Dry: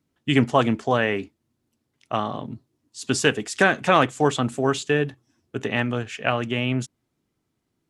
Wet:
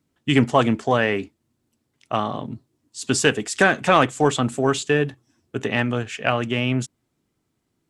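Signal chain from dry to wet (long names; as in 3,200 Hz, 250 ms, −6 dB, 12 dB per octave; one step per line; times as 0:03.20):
parametric band 7,900 Hz +3.5 dB 0.27 octaves
in parallel at −10.5 dB: soft clipping −14 dBFS, distortion −11 dB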